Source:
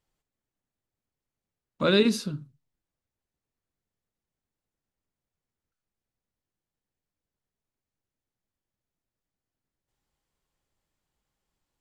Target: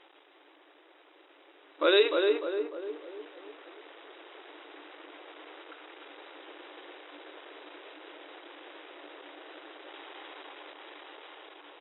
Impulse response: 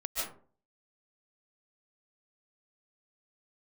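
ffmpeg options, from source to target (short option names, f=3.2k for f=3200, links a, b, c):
-filter_complex "[0:a]aeval=exprs='val(0)+0.5*0.0168*sgn(val(0))':c=same,agate=range=-8dB:threshold=-32dB:ratio=16:detection=peak,asplit=2[a][b];[b]adelay=299,lowpass=f=1.4k:p=1,volume=-4dB,asplit=2[c][d];[d]adelay=299,lowpass=f=1.4k:p=1,volume=0.45,asplit=2[e][f];[f]adelay=299,lowpass=f=1.4k:p=1,volume=0.45,asplit=2[g][h];[h]adelay=299,lowpass=f=1.4k:p=1,volume=0.45,asplit=2[i][j];[j]adelay=299,lowpass=f=1.4k:p=1,volume=0.45,asplit=2[k][l];[l]adelay=299,lowpass=f=1.4k:p=1,volume=0.45[m];[a][c][e][g][i][k][m]amix=inputs=7:normalize=0,afftfilt=real='re*between(b*sr/4096,280,3900)':imag='im*between(b*sr/4096,280,3900)':win_size=4096:overlap=0.75,dynaudnorm=f=490:g=11:m=12dB,volume=-3.5dB"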